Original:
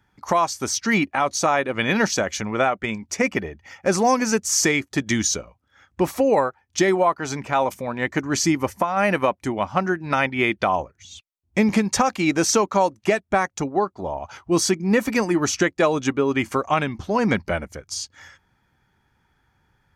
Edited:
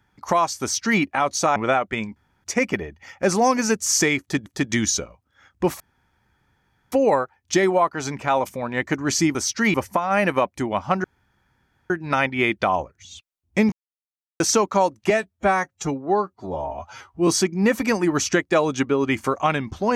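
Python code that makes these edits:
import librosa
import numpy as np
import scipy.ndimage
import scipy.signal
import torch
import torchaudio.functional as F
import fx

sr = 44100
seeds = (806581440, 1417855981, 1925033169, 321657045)

y = fx.edit(x, sr, fx.duplicate(start_s=0.62, length_s=0.39, to_s=8.6),
    fx.cut(start_s=1.56, length_s=0.91),
    fx.insert_room_tone(at_s=3.07, length_s=0.28),
    fx.repeat(start_s=4.83, length_s=0.26, count=2),
    fx.insert_room_tone(at_s=6.17, length_s=1.12),
    fx.insert_room_tone(at_s=9.9, length_s=0.86),
    fx.silence(start_s=11.72, length_s=0.68),
    fx.stretch_span(start_s=13.1, length_s=1.45, factor=1.5), tone=tone)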